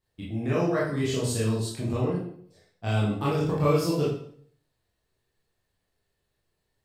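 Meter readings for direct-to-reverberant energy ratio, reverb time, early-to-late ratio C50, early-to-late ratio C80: -7.5 dB, 0.60 s, 2.5 dB, 6.5 dB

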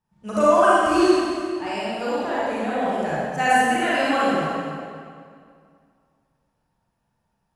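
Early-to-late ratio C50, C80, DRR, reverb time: -5.5 dB, -2.5 dB, -9.0 dB, 2.2 s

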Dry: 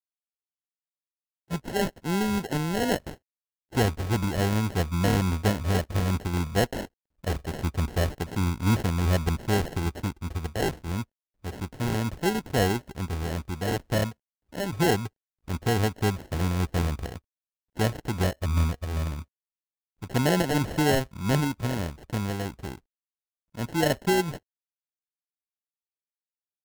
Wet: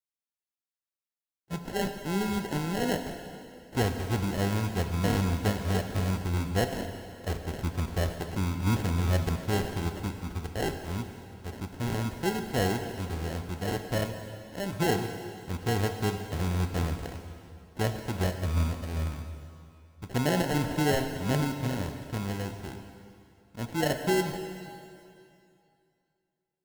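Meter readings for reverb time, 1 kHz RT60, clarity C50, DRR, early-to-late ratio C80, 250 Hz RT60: 2.6 s, 2.6 s, 7.0 dB, 6.0 dB, 7.5 dB, 2.6 s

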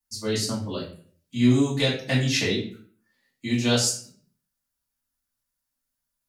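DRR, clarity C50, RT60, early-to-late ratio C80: -9.0 dB, 6.5 dB, 0.50 s, 10.0 dB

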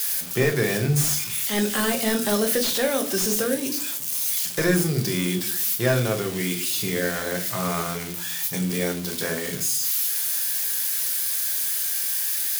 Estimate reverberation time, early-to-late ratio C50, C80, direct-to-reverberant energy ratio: 0.40 s, 14.0 dB, 18.5 dB, 4.0 dB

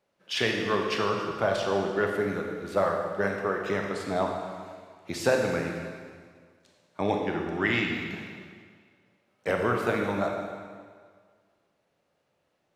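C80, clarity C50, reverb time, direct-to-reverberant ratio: 4.5 dB, 3.0 dB, 1.8 s, 1.5 dB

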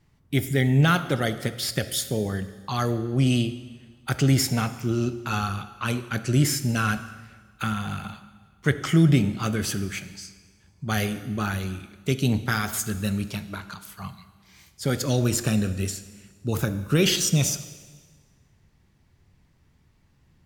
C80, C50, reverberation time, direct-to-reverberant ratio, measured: 14.5 dB, 13.5 dB, 1.5 s, 11.5 dB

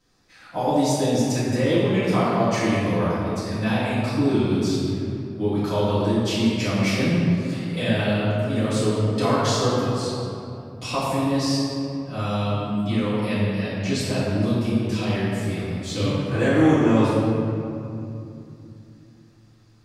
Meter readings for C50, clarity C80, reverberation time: -3.5 dB, -1.5 dB, 2.7 s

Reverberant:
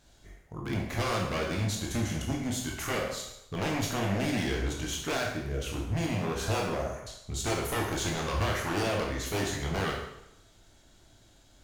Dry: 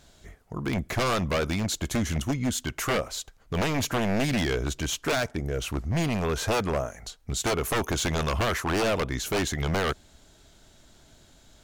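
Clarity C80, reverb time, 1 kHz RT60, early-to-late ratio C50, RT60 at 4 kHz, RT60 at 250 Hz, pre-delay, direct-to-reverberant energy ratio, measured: 6.0 dB, 0.80 s, 0.80 s, 3.5 dB, 0.75 s, 0.80 s, 14 ms, -1.5 dB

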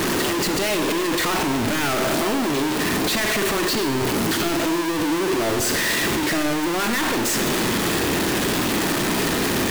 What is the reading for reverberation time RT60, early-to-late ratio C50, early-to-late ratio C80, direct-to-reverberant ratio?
1.3 s, 8.5 dB, 9.0 dB, 7.0 dB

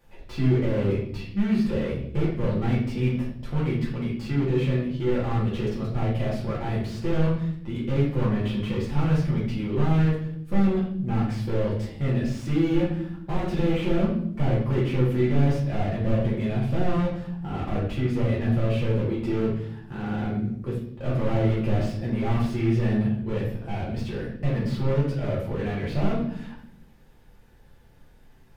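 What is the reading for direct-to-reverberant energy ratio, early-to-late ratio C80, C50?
-6.5 dB, 8.0 dB, 4.0 dB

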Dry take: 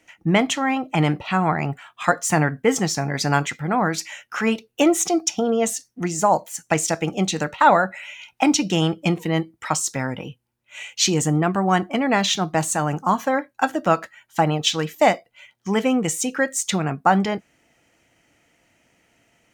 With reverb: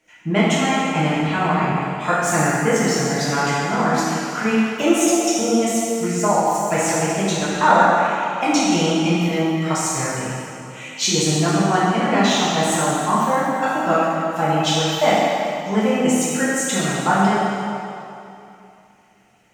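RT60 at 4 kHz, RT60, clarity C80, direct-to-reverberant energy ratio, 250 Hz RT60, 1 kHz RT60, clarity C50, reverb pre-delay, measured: 2.3 s, 2.8 s, -1.5 dB, -9.5 dB, 2.6 s, 2.8 s, -3.0 dB, 3 ms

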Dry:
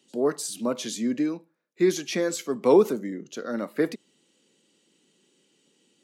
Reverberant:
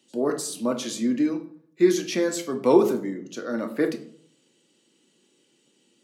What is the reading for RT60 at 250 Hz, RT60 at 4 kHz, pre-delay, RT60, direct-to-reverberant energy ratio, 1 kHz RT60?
0.70 s, 0.40 s, 3 ms, 0.60 s, 5.0 dB, 0.55 s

